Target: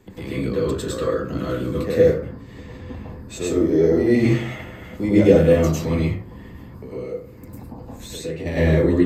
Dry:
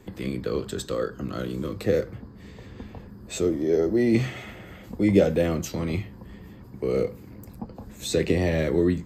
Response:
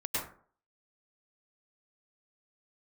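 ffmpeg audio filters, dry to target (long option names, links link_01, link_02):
-filter_complex "[0:a]asplit=3[link_01][link_02][link_03];[link_01]afade=type=out:start_time=6.03:duration=0.02[link_04];[link_02]acompressor=threshold=-37dB:ratio=3,afade=type=in:start_time=6.03:duration=0.02,afade=type=out:start_time=8.45:duration=0.02[link_05];[link_03]afade=type=in:start_time=8.45:duration=0.02[link_06];[link_04][link_05][link_06]amix=inputs=3:normalize=0[link_07];[1:a]atrim=start_sample=2205[link_08];[link_07][link_08]afir=irnorm=-1:irlink=0"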